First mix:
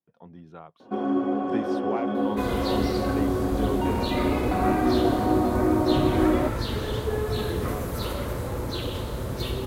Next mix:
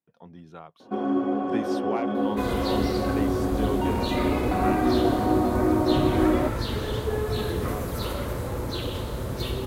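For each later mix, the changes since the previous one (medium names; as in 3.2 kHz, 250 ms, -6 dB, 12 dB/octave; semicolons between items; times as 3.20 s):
speech: add treble shelf 3.1 kHz +9 dB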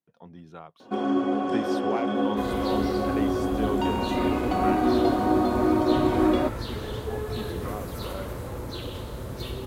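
first sound: add treble shelf 2.3 kHz +11.5 dB; second sound -4.5 dB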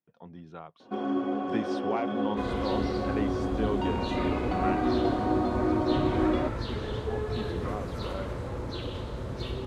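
first sound -4.5 dB; master: add distance through air 85 m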